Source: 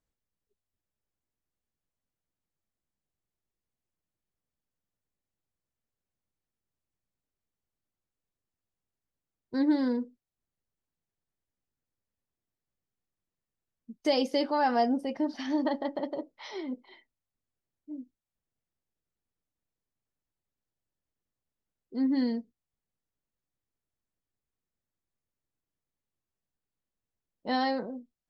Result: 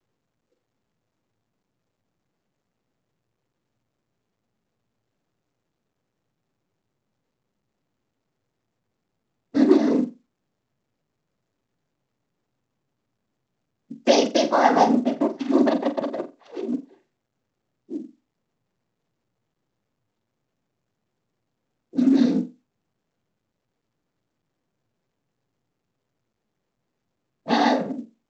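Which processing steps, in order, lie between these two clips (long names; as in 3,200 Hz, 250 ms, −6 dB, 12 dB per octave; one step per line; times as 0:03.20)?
adaptive Wiener filter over 41 samples
cochlear-implant simulation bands 16
on a send: flutter between parallel walls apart 7.6 metres, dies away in 0.25 s
on the sum: level +9 dB
mu-law 128 kbit/s 16,000 Hz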